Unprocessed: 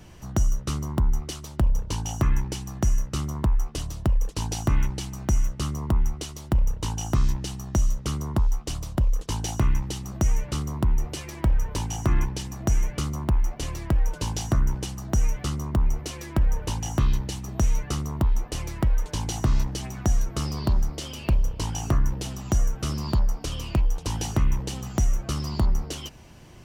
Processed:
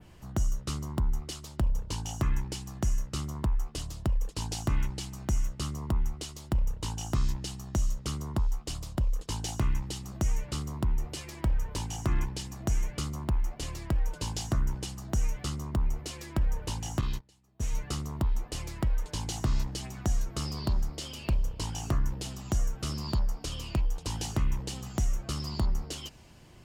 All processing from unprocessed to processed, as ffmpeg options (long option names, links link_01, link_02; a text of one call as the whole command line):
ffmpeg -i in.wav -filter_complex "[0:a]asettb=1/sr,asplit=3[link_01][link_02][link_03];[link_01]atrim=end=17.014[link_04];[link_02]atrim=start=17.01:end=17.73,asetpts=PTS-STARTPTS,afade=type=in:duration=0.004:curve=qsin,afade=type=out:start_time=0.716:duration=0.004:curve=qsin,agate=range=-24dB:threshold=-23dB:ratio=16:release=100:detection=peak,lowshelf=frequency=210:gain=-4.5[link_05];[link_03]atrim=start=17.726[link_06];[link_04][link_05]acrossfade=duration=0.004:curve1=hsin:curve2=qsin[link_07];[link_07][link_06]acrossfade=duration=0.004:curve1=qsin:curve2=hsin,bandreject=frequency=5900:width=11,adynamicequalizer=threshold=0.00355:dfrequency=5900:dqfactor=0.76:tfrequency=5900:tqfactor=0.76:attack=5:release=100:ratio=0.375:range=3:mode=boostabove:tftype=bell,volume=-6dB" out.wav